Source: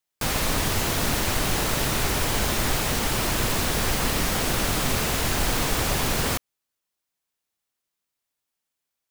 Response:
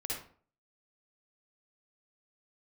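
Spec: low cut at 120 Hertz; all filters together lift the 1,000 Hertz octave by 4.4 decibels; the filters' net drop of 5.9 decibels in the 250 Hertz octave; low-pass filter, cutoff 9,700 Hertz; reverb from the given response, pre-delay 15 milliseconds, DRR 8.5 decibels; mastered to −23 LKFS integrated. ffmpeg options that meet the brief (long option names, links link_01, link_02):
-filter_complex "[0:a]highpass=120,lowpass=9700,equalizer=frequency=250:width_type=o:gain=-8,equalizer=frequency=1000:width_type=o:gain=6,asplit=2[link_01][link_02];[1:a]atrim=start_sample=2205,adelay=15[link_03];[link_02][link_03]afir=irnorm=-1:irlink=0,volume=-10.5dB[link_04];[link_01][link_04]amix=inputs=2:normalize=0,volume=1dB"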